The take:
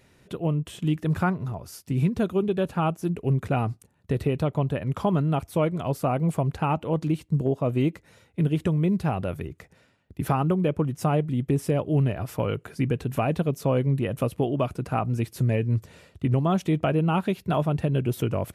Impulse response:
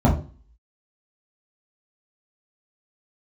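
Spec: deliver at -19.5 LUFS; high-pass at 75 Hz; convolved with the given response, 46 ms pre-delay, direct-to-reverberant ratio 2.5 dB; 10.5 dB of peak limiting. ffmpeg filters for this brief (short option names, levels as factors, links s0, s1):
-filter_complex "[0:a]highpass=75,alimiter=limit=0.0944:level=0:latency=1,asplit=2[s0][s1];[1:a]atrim=start_sample=2205,adelay=46[s2];[s1][s2]afir=irnorm=-1:irlink=0,volume=0.0944[s3];[s0][s3]amix=inputs=2:normalize=0,volume=0.794"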